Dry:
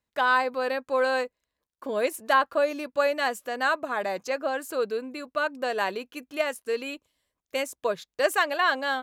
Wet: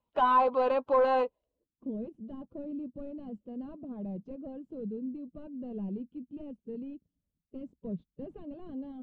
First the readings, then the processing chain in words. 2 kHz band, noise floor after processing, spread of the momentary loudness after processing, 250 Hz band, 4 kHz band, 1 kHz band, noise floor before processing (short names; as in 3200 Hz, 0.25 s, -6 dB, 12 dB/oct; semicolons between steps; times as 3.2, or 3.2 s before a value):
-18.5 dB, under -85 dBFS, 19 LU, +1.0 dB, under -15 dB, -4.5 dB, under -85 dBFS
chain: bin magnitudes rounded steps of 15 dB; resonant high shelf 2300 Hz +9.5 dB, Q 3; in parallel at +1 dB: limiter -17.5 dBFS, peak gain reduction 10 dB; on the sum: hard clip -18 dBFS, distortion -9 dB; low-pass sweep 1000 Hz -> 200 Hz, 1.29–1.85; gain -5 dB